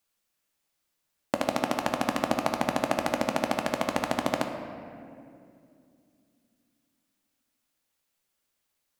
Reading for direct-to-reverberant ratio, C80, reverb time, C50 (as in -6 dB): 4.0 dB, 7.0 dB, 2.5 s, 6.0 dB